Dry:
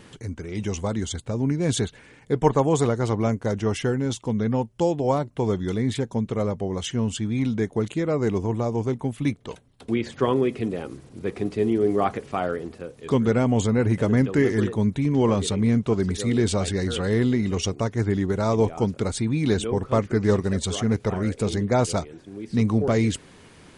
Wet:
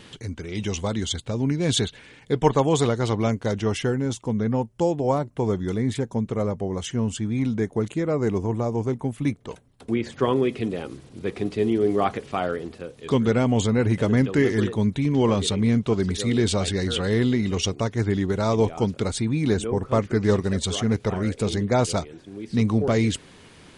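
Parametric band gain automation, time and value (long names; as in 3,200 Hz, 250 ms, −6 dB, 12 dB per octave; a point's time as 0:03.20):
parametric band 3,500 Hz 1.1 octaves
0:03.48 +8 dB
0:04.13 −3.5 dB
0:09.92 −3.5 dB
0:10.52 +5 dB
0:19.05 +5 dB
0:19.71 −6 dB
0:20.08 +3.5 dB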